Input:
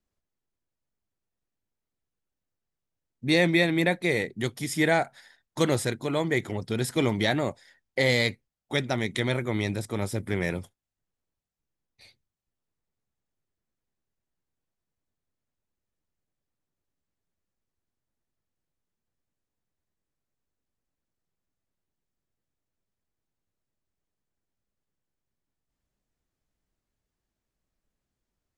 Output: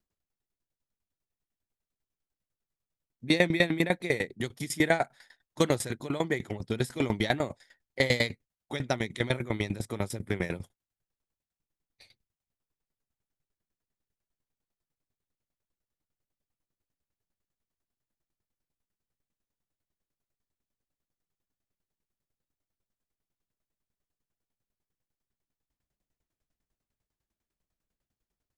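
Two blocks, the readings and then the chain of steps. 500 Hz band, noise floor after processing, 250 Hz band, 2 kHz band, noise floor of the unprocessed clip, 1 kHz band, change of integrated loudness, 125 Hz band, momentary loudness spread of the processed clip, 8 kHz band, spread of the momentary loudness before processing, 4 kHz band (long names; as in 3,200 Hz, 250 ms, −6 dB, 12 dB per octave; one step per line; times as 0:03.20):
−3.0 dB, below −85 dBFS, −3.5 dB, −3.5 dB, below −85 dBFS, −2.5 dB, −3.0 dB, −4.0 dB, 10 LU, −3.0 dB, 9 LU, −3.5 dB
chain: tremolo with a ramp in dB decaying 10 Hz, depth 19 dB
level +3 dB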